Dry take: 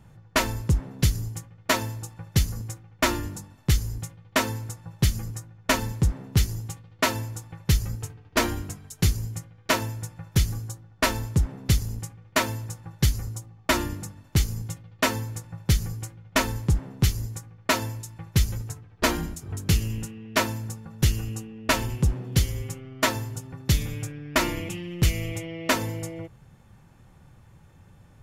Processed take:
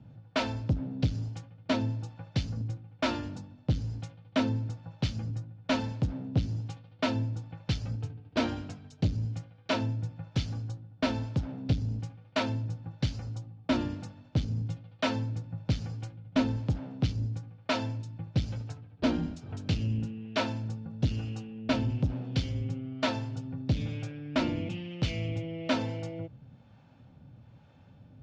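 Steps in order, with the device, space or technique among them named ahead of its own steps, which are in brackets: guitar amplifier with harmonic tremolo (harmonic tremolo 1.1 Hz, depth 50%, crossover 470 Hz; soft clip -21 dBFS, distortion -11 dB; speaker cabinet 79–4600 Hz, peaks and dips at 120 Hz +4 dB, 260 Hz +9 dB, 370 Hz -6 dB, 600 Hz +4 dB, 1100 Hz -7 dB, 1900 Hz -8 dB)

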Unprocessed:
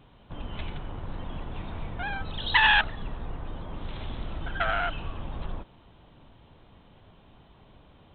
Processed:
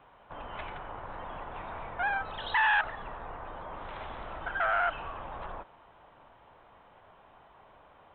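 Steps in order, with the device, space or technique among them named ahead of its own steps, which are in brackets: DJ mixer with the lows and highs turned down (three-band isolator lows -19 dB, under 550 Hz, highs -21 dB, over 2100 Hz; limiter -25.5 dBFS, peak gain reduction 11 dB); gain +6.5 dB

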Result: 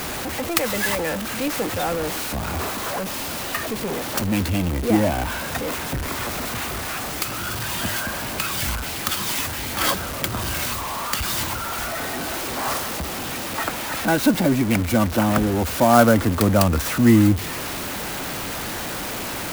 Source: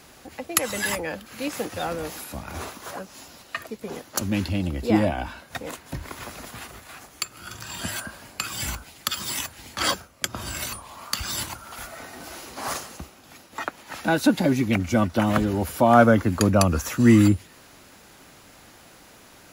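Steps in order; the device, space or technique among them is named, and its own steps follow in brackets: early CD player with a faulty converter (zero-crossing step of -23 dBFS; clock jitter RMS 0.039 ms)

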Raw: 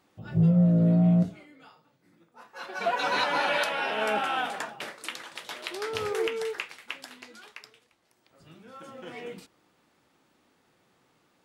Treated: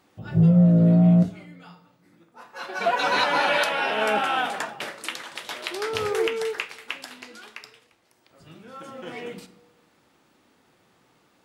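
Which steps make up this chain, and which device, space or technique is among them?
compressed reverb return (on a send at -11 dB: reverb RT60 0.90 s, pre-delay 30 ms + compressor, threshold -38 dBFS, peak gain reduction 19 dB); on the sum: gain +4.5 dB

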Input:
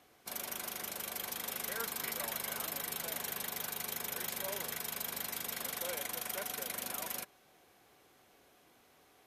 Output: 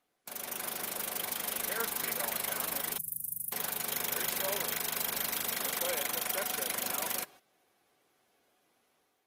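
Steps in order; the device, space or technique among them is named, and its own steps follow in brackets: 2.98–3.52 Chebyshev band-stop 140–9500 Hz, order 3; video call (HPF 150 Hz 6 dB/oct; AGC gain up to 6 dB; gate -52 dBFS, range -13 dB; Opus 20 kbps 48000 Hz)

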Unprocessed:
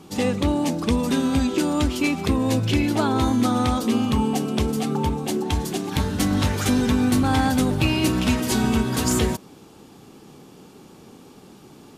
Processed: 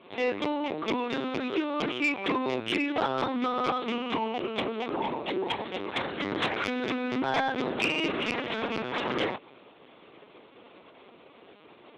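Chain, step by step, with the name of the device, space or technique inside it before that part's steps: talking toy (LPC vocoder at 8 kHz pitch kept; HPF 380 Hz 12 dB/oct; bell 2200 Hz +5.5 dB 0.51 oct; soft clip -17.5 dBFS, distortion -17 dB)

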